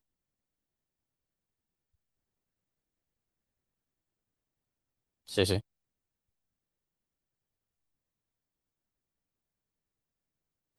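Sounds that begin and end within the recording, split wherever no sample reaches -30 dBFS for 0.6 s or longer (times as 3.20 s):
5.35–5.59 s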